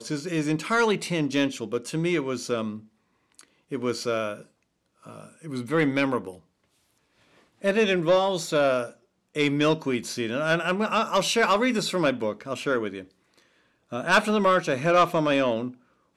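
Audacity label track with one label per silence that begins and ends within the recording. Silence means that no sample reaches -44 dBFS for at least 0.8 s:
6.380000	7.620000	silence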